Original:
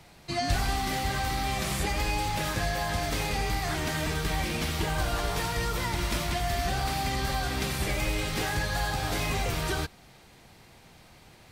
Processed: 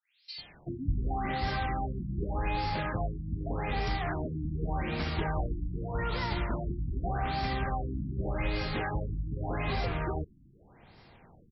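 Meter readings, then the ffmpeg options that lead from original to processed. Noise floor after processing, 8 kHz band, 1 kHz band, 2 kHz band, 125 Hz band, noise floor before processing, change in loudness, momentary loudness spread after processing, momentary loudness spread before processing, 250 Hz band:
−59 dBFS, below −30 dB, −3.5 dB, −7.0 dB, −1.5 dB, −54 dBFS, −4.0 dB, 4 LU, 1 LU, −1.5 dB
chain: -filter_complex "[0:a]acrossover=split=3000[link_01][link_02];[link_01]adelay=380[link_03];[link_03][link_02]amix=inputs=2:normalize=0,afftfilt=real='re*lt(b*sr/1024,330*pow(5700/330,0.5+0.5*sin(2*PI*0.84*pts/sr)))':imag='im*lt(b*sr/1024,330*pow(5700/330,0.5+0.5*sin(2*PI*0.84*pts/sr)))':win_size=1024:overlap=0.75,volume=-1.5dB"

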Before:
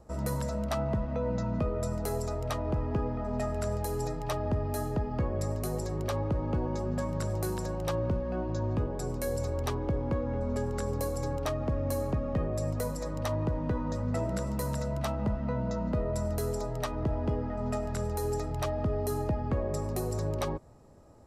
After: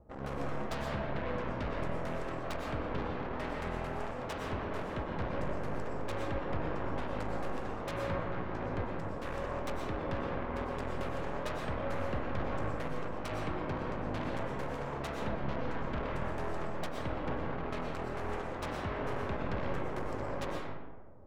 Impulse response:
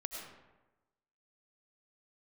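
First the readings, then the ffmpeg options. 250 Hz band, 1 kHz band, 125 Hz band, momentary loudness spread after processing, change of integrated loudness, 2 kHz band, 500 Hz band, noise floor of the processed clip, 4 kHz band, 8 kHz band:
−5.5 dB, 0.0 dB, −9.0 dB, 2 LU, −5.5 dB, +4.5 dB, −5.0 dB, −39 dBFS, −2.0 dB, −14.0 dB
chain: -filter_complex "[0:a]adynamicsmooth=sensitivity=6.5:basefreq=1400,aeval=exprs='0.0891*(cos(1*acos(clip(val(0)/0.0891,-1,1)))-cos(1*PI/2))+0.0447*(cos(2*acos(clip(val(0)/0.0891,-1,1)))-cos(2*PI/2))+0.0126*(cos(4*acos(clip(val(0)/0.0891,-1,1)))-cos(4*PI/2))+0.0398*(cos(7*acos(clip(val(0)/0.0891,-1,1)))-cos(7*PI/2))':channel_layout=same[link_01];[1:a]atrim=start_sample=2205,asetrate=37044,aresample=44100[link_02];[link_01][link_02]afir=irnorm=-1:irlink=0,volume=-8.5dB"

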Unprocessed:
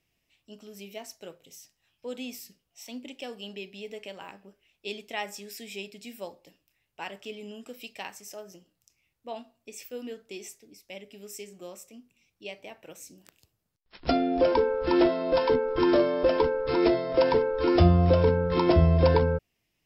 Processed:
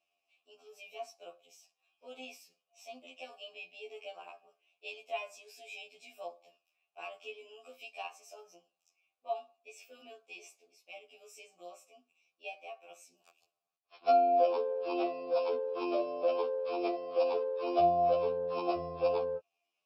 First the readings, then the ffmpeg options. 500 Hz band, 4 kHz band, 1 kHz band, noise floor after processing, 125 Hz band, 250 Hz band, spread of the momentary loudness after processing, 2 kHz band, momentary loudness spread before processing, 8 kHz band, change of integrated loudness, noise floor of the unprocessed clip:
−6.5 dB, −10.0 dB, −1.5 dB, below −85 dBFS, below −25 dB, −15.5 dB, 22 LU, −9.5 dB, 21 LU, −12.0 dB, −8.5 dB, −78 dBFS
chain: -filter_complex "[0:a]bass=frequency=250:gain=-7,treble=frequency=4000:gain=13,asplit=2[link_01][link_02];[link_02]acompressor=threshold=-31dB:ratio=5,volume=-1.5dB[link_03];[link_01][link_03]amix=inputs=2:normalize=0,asplit=3[link_04][link_05][link_06];[link_04]bandpass=frequency=730:width_type=q:width=8,volume=0dB[link_07];[link_05]bandpass=frequency=1090:width_type=q:width=8,volume=-6dB[link_08];[link_06]bandpass=frequency=2440:width_type=q:width=8,volume=-9dB[link_09];[link_07][link_08][link_09]amix=inputs=3:normalize=0,afftfilt=real='re*2*eq(mod(b,4),0)':imag='im*2*eq(mod(b,4),0)':win_size=2048:overlap=0.75,volume=3dB"

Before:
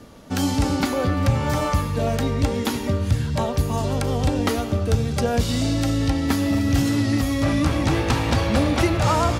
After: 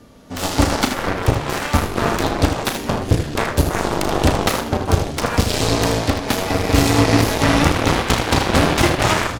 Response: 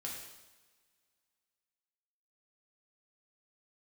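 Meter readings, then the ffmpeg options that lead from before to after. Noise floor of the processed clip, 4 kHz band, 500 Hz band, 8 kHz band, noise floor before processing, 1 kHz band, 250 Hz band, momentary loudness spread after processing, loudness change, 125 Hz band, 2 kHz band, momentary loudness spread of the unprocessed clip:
−27 dBFS, +7.5 dB, +4.5 dB, +7.5 dB, −28 dBFS, +6.0 dB, +1.5 dB, 6 LU, +3.5 dB, +1.5 dB, +8.0 dB, 3 LU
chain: -filter_complex "[0:a]asplit=2[link_01][link_02];[1:a]atrim=start_sample=2205,asetrate=79380,aresample=44100[link_03];[link_02][link_03]afir=irnorm=-1:irlink=0,volume=-8.5dB[link_04];[link_01][link_04]amix=inputs=2:normalize=0,dynaudnorm=framelen=120:gausssize=7:maxgain=10dB,aeval=exprs='0.891*(cos(1*acos(clip(val(0)/0.891,-1,1)))-cos(1*PI/2))+0.251*(cos(7*acos(clip(val(0)/0.891,-1,1)))-cos(7*PI/2))':channel_layout=same,asplit=2[link_05][link_06];[link_06]aecho=0:1:35|79:0.335|0.376[link_07];[link_05][link_07]amix=inputs=2:normalize=0,volume=-3dB"

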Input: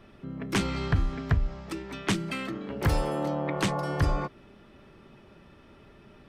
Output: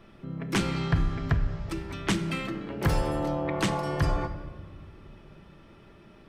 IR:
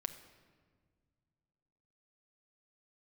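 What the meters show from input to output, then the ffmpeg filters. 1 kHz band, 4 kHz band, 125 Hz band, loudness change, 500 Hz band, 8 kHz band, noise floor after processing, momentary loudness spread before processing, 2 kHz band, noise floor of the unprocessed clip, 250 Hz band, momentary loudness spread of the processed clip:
+0.5 dB, +0.5 dB, +0.5 dB, +0.5 dB, +0.5 dB, 0.0 dB, −53 dBFS, 9 LU, +0.5 dB, −55 dBFS, +1.0 dB, 14 LU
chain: -filter_complex "[1:a]atrim=start_sample=2205[link_01];[0:a][link_01]afir=irnorm=-1:irlink=0,volume=1.5dB"

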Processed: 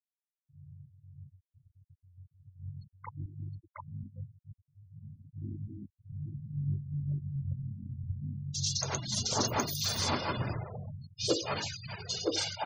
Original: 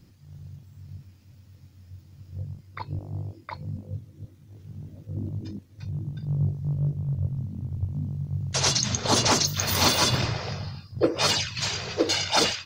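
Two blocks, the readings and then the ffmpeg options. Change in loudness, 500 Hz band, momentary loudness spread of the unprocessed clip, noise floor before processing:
−9.0 dB, −8.5 dB, 20 LU, −53 dBFS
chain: -filter_complex "[0:a]acrossover=split=2900[link_01][link_02];[link_01]adelay=270[link_03];[link_03][link_02]amix=inputs=2:normalize=0,afftfilt=real='re*gte(hypot(re,im),0.0355)':imag='im*gte(hypot(re,im),0.0355)':win_size=1024:overlap=0.75,volume=-8dB"

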